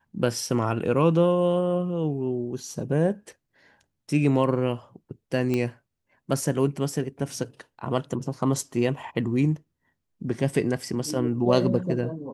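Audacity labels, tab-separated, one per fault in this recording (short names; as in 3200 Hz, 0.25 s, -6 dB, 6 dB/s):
5.540000	5.540000	pop -14 dBFS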